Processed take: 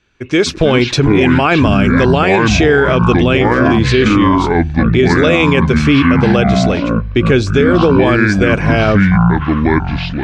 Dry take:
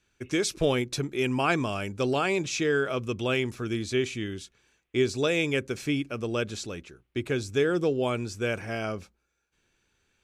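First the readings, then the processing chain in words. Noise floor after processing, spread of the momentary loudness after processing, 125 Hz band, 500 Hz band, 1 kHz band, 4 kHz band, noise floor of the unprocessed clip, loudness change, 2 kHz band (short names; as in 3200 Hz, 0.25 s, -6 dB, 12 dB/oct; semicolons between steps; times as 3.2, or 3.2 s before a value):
-22 dBFS, 4 LU, +21.5 dB, +15.0 dB, +19.0 dB, +14.0 dB, -76 dBFS, +17.0 dB, +17.0 dB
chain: LPF 4100 Hz 12 dB/oct; AGC gain up to 8 dB; echoes that change speed 0.15 s, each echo -7 st, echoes 2; maximiser +13 dB; gain -1 dB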